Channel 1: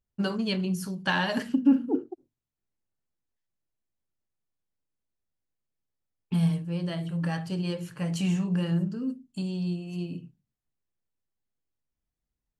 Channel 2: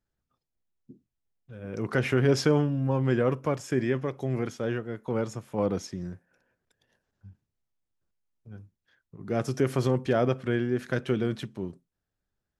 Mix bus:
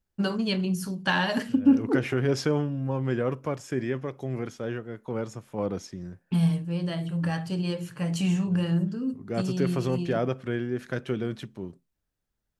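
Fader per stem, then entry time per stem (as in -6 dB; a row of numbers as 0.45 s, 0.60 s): +1.5 dB, -2.5 dB; 0.00 s, 0.00 s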